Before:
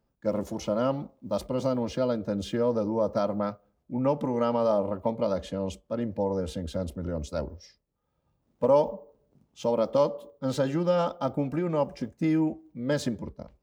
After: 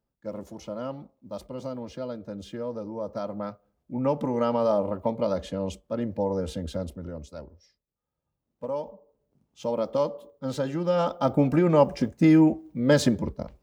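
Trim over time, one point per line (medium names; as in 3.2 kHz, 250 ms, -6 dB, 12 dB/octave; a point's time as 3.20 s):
2.94 s -7.5 dB
4.20 s +1 dB
6.71 s +1 dB
7.43 s -10 dB
8.95 s -10 dB
9.71 s -2 dB
10.77 s -2 dB
11.44 s +7.5 dB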